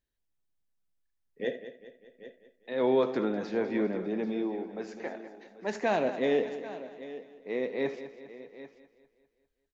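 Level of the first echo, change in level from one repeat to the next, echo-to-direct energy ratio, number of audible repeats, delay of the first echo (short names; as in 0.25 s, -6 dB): -16.5 dB, no steady repeat, -9.0 dB, 8, 78 ms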